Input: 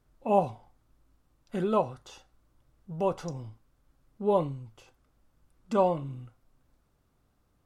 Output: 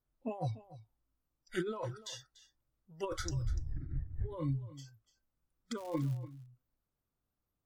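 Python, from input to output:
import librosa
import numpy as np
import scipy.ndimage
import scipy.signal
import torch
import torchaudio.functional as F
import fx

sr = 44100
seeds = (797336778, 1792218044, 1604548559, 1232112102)

p1 = fx.dmg_wind(x, sr, seeds[0], corner_hz=150.0, level_db=-33.0, at=(3.18, 4.35), fade=0.02)
p2 = fx.noise_reduce_blind(p1, sr, reduce_db=24)
p3 = fx.over_compress(p2, sr, threshold_db=-37.0, ratio=-1.0)
p4 = fx.dmg_crackle(p3, sr, seeds[1], per_s=300.0, level_db=-43.0, at=(5.76, 6.16), fade=0.02)
y = p4 + fx.echo_single(p4, sr, ms=292, db=-17.0, dry=0)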